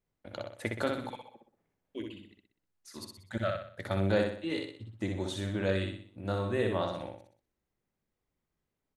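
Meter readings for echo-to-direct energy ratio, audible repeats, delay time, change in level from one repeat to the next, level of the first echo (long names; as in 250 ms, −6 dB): −3.0 dB, 5, 62 ms, −7.5 dB, −4.0 dB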